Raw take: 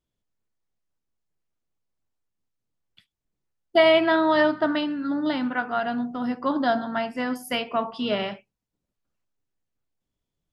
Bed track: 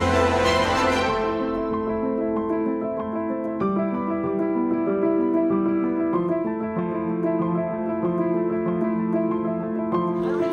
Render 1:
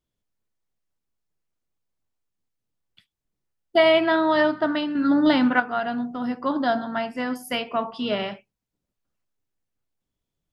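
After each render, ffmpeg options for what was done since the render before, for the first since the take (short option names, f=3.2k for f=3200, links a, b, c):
-filter_complex "[0:a]asettb=1/sr,asplit=3[a][b][c];[a]atrim=end=4.954[d];[b]atrim=start=4.95:end=5.6,asetpts=PTS-STARTPTS,afade=t=in:d=0.004:c=qsin,afade=t=out:st=0.646:d=0.004:c=qsin,acontrast=89[e];[c]atrim=start=5.596[f];[d][e]acrossfade=d=0.004:c1=hsin:c2=qsin[g];[g][f]acrossfade=d=0.004:c1=qsin:c2=hsin"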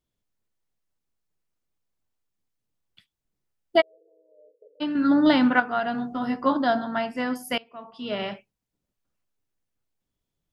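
-filter_complex "[0:a]asplit=3[a][b][c];[a]afade=t=out:st=3.8:d=0.02[d];[b]asuperpass=centerf=470:order=8:qfactor=5.2,afade=t=in:st=3.8:d=0.02,afade=t=out:st=4.8:d=0.02[e];[c]afade=t=in:st=4.8:d=0.02[f];[d][e][f]amix=inputs=3:normalize=0,asettb=1/sr,asplit=3[g][h][i];[g]atrim=end=5.934[j];[h]atrim=start=5.93:end=6.57,asetpts=PTS-STARTPTS,afade=t=in:d=0.004:c=qsin,afade=t=out:st=0.636:d=0.004:c=qsin,asplit=2[k][l];[l]adelay=15,volume=-2dB[m];[k][m]amix=inputs=2:normalize=0,atrim=end_sample=28224[n];[i]atrim=start=6.566[o];[j][n]acrossfade=d=0.004:c1=hsin:c2=qsin[p];[p][o]acrossfade=d=0.004:c1=qsin:c2=hsin,asplit=2[q][r];[q]atrim=end=7.58,asetpts=PTS-STARTPTS,afade=t=out:st=7.576:d=0.004:c=hsin:silence=0.0891251[s];[r]atrim=start=7.58,asetpts=PTS-STARTPTS,afade=t=in:d=0.73:c=qua:silence=0.0891251[t];[s][t]concat=n=2:v=0:a=1"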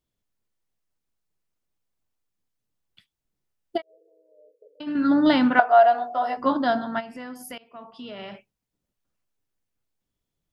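-filter_complex "[0:a]asplit=3[a][b][c];[a]afade=t=out:st=3.76:d=0.02[d];[b]acompressor=threshold=-33dB:ratio=10:attack=3.2:release=140:knee=1:detection=peak,afade=t=in:st=3.76:d=0.02,afade=t=out:st=4.86:d=0.02[e];[c]afade=t=in:st=4.86:d=0.02[f];[d][e][f]amix=inputs=3:normalize=0,asettb=1/sr,asplit=3[g][h][i];[g]atrim=end=5.594[j];[h]atrim=start=5.59:end=6.37,asetpts=PTS-STARTPTS,afade=t=in:d=0.004:c=qsin,afade=t=out:st=0.776:d=0.004:c=qsin,highpass=f=640:t=q:w=6.7[k];[i]atrim=start=6.366[l];[j][k]acrossfade=d=0.004:c1=hsin:c2=qsin[m];[m][l]acrossfade=d=0.004:c1=qsin:c2=hsin,asplit=3[n][o][p];[n]afade=t=out:st=6.99:d=0.02[q];[o]acompressor=threshold=-35dB:ratio=5:attack=3.2:release=140:knee=1:detection=peak,afade=t=in:st=6.99:d=0.02,afade=t=out:st=8.33:d=0.02[r];[p]afade=t=in:st=8.33:d=0.02[s];[q][r][s]amix=inputs=3:normalize=0"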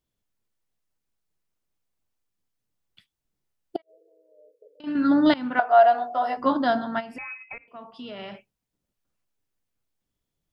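-filter_complex "[0:a]asettb=1/sr,asplit=3[a][b][c];[a]atrim=end=3.764[d];[b]atrim=start=3.76:end=4.84,asetpts=PTS-STARTPTS,afade=t=in:d=0.004:c=qsin,afade=t=out:st=1.076:d=0.004:c=qsin,acompressor=threshold=-44dB:ratio=20:attack=3.2:release=140:knee=1:detection=peak[e];[c]atrim=start=4.836[f];[d][e]acrossfade=d=0.004:c1=hsin:c2=qsin[g];[g][f]acrossfade=d=0.004:c1=qsin:c2=hsin,asettb=1/sr,asplit=3[h][i][j];[h]atrim=end=7.184[k];[i]atrim=start=7.18:end=7.68,asetpts=PTS-STARTPTS,afade=t=in:d=0.004:c=qsin,afade=t=out:st=0.496:d=0.004:c=qsin,lowpass=f=2.4k:t=q:w=0.5098,lowpass=f=2.4k:t=q:w=0.6013,lowpass=f=2.4k:t=q:w=0.9,lowpass=f=2.4k:t=q:w=2.563,afreqshift=-2800[l];[j]atrim=start=7.676[m];[k][l]acrossfade=d=0.004:c1=hsin:c2=qsin[n];[n][m]acrossfade=d=0.004:c1=qsin:c2=hsin,asplit=2[o][p];[o]atrim=end=5.34,asetpts=PTS-STARTPTS,afade=t=out:st=5.336:d=0.004:c=hsin:silence=0.0794328[q];[p]atrim=start=5.34,asetpts=PTS-STARTPTS,afade=t=in:d=0.47:silence=0.0794328[r];[q][r]concat=n=2:v=0:a=1"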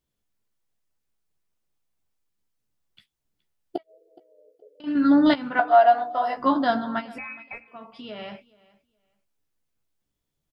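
-filter_complex "[0:a]asplit=2[a][b];[b]adelay=14,volume=-8dB[c];[a][c]amix=inputs=2:normalize=0,aecho=1:1:420|840:0.0708|0.0135"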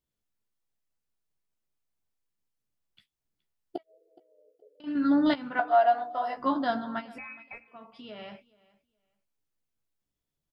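-af "volume=-6dB"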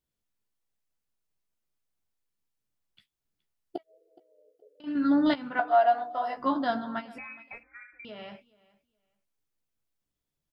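-filter_complex "[0:a]asettb=1/sr,asplit=3[a][b][c];[a]atrim=end=7.634[d];[b]atrim=start=7.63:end=8.05,asetpts=PTS-STARTPTS,afade=t=in:d=0.004:c=qsin,afade=t=out:st=0.416:d=0.004:c=qsin,lowpass=f=2.2k:t=q:w=0.5098,lowpass=f=2.2k:t=q:w=0.6013,lowpass=f=2.2k:t=q:w=0.9,lowpass=f=2.2k:t=q:w=2.563,afreqshift=-2600[e];[c]atrim=start=8.046[f];[d][e]acrossfade=d=0.004:c1=hsin:c2=qsin[g];[g][f]acrossfade=d=0.004:c1=qsin:c2=hsin"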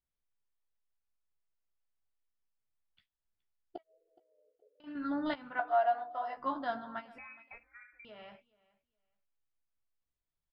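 -af "lowpass=f=1.2k:p=1,equalizer=f=240:w=0.43:g=-12.5"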